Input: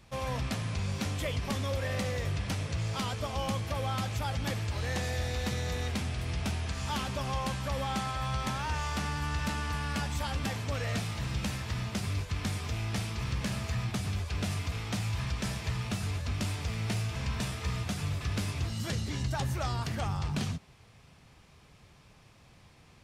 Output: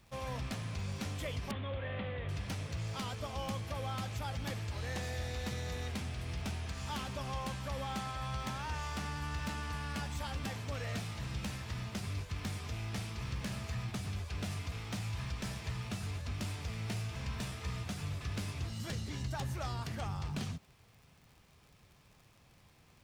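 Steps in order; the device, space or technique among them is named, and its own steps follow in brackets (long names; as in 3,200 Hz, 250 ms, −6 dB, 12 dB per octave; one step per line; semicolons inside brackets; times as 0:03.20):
record under a worn stylus (stylus tracing distortion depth 0.026 ms; surface crackle 70 per second −45 dBFS; white noise bed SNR 41 dB)
0:01.51–0:02.29: elliptic low-pass filter 3,400 Hz, stop band 50 dB
level −6 dB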